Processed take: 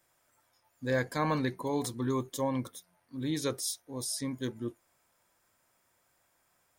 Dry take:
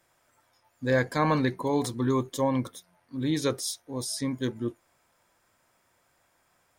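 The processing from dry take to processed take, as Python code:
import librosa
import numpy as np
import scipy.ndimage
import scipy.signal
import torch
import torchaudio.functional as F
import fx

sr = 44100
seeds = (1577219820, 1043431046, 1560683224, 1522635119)

y = fx.high_shelf(x, sr, hz=7800.0, db=8.0)
y = y * librosa.db_to_amplitude(-5.5)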